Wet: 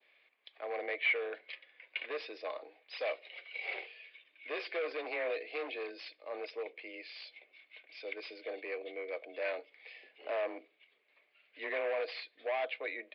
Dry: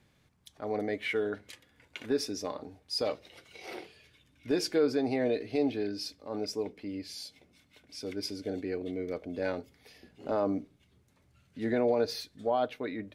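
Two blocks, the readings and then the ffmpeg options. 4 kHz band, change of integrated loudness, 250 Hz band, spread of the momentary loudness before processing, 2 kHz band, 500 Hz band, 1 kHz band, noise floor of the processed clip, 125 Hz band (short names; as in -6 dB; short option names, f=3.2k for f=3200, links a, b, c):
-6.5 dB, -6.0 dB, -20.0 dB, 17 LU, +4.5 dB, -6.5 dB, -5.5 dB, -73 dBFS, under -40 dB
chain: -af "adynamicequalizer=threshold=0.00282:dfrequency=2100:dqfactor=1:tfrequency=2100:tqfactor=1:attack=5:release=100:ratio=0.375:range=2:mode=cutabove:tftype=bell,crystalizer=i=5.5:c=0,afreqshift=24,aresample=11025,asoftclip=type=hard:threshold=-28.5dB,aresample=44100,highpass=f=500:w=0.5412,highpass=f=500:w=1.3066,equalizer=f=890:t=q:w=4:g=-8,equalizer=f=1.4k:t=q:w=4:g=-8,equalizer=f=2.3k:t=q:w=4:g=6,lowpass=f=2.8k:w=0.5412,lowpass=f=2.8k:w=1.3066"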